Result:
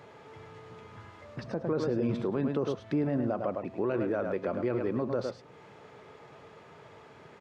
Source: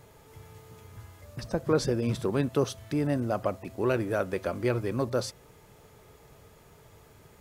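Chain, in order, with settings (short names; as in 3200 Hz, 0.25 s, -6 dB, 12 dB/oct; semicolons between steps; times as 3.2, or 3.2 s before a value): HPF 160 Hz 12 dB/oct; tape spacing loss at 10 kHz 32 dB; outdoor echo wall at 18 m, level -9 dB; limiter -24.5 dBFS, peak gain reduction 10.5 dB; mismatched tape noise reduction encoder only; gain +3.5 dB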